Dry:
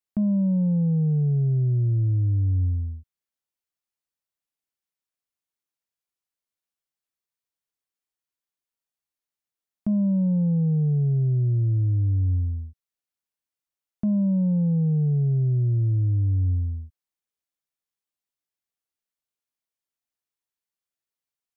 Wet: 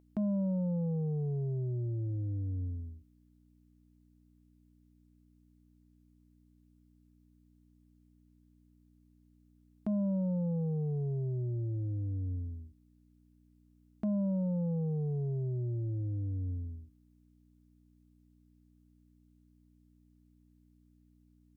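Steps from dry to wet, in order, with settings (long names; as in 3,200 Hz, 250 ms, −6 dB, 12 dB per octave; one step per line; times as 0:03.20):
mains hum 60 Hz, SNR 27 dB
bass and treble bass −14 dB, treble +1 dB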